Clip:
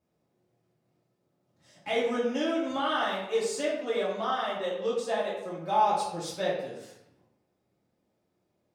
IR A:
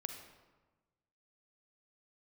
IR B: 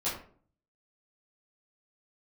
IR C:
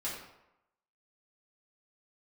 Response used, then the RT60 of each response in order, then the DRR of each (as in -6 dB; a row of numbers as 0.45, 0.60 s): C; 1.2, 0.50, 0.90 s; 5.0, -10.5, -8.0 dB